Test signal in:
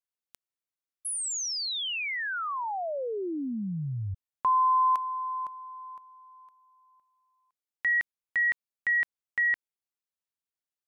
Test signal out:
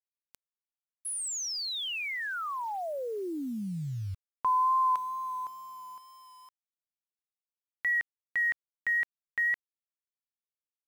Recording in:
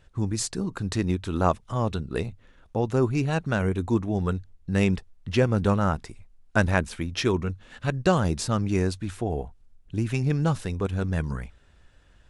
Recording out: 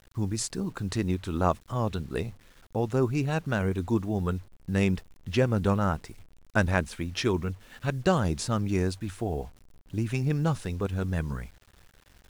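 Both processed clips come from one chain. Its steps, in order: bit crusher 9-bit; wow and flutter 23 cents; trim -2.5 dB

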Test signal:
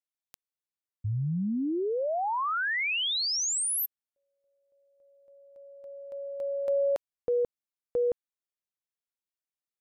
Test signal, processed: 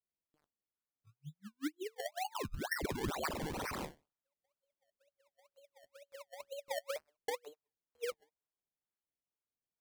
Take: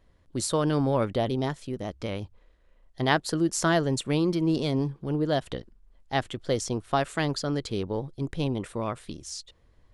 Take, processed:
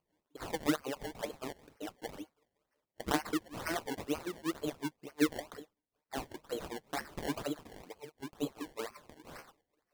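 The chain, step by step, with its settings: feedback comb 150 Hz, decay 0.26 s, harmonics all, mix 90%; LFO high-pass sine 5.3 Hz 270–3700 Hz; decimation with a swept rate 24×, swing 100% 2.1 Hz; trim -2 dB

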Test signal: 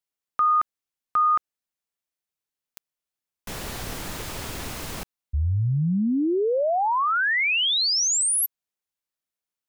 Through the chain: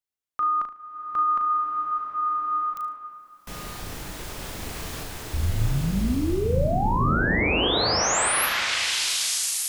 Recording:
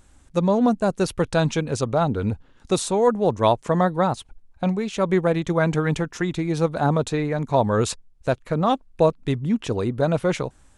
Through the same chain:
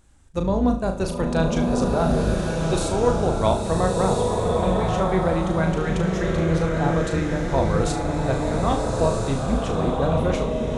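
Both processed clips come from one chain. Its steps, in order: octave divider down 2 oct, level -2 dB; on a send: flutter echo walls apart 6.3 m, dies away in 0.34 s; on the sum: swelling reverb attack 1340 ms, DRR -0.5 dB; trim -4.5 dB

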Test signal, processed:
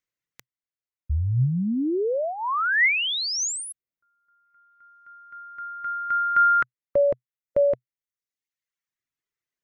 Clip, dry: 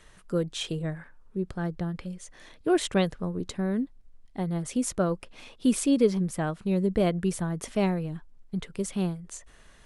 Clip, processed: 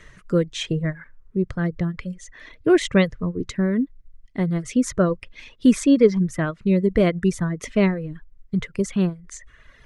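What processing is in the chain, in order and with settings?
treble shelf 3.6 kHz -9 dB; reverb removal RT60 1.1 s; graphic EQ with 31 bands 125 Hz +7 dB, 800 Hz -12 dB, 2 kHz +8 dB, 6.3 kHz +5 dB, 10 kHz -6 dB; trim +8 dB

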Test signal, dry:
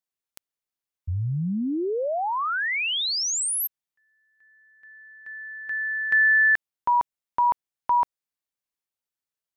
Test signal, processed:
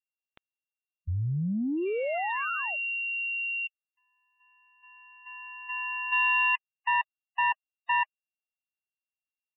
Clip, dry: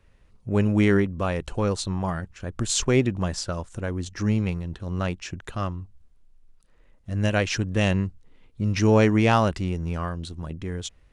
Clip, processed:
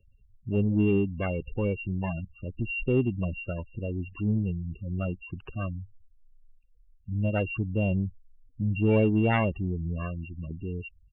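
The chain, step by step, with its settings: sorted samples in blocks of 16 samples; spectral gate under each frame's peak -15 dB strong; treble shelf 2.8 kHz -4 dB; in parallel at -5 dB: saturation -19.5 dBFS; on the sum: resampled via 8 kHz; trim -6 dB

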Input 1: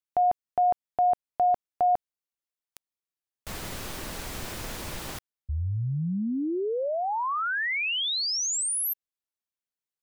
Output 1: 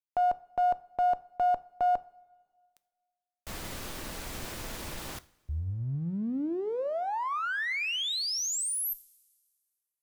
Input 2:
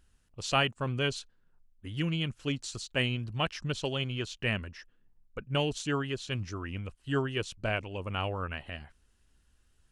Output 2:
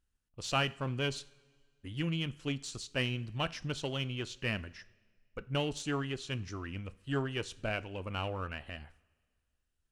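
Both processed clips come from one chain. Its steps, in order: expander -54 dBFS, range -13 dB; in parallel at -5 dB: one-sided clip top -35.5 dBFS; on the sum: two-slope reverb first 0.42 s, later 1.8 s, from -16 dB, DRR 14.5 dB; trim -6.5 dB

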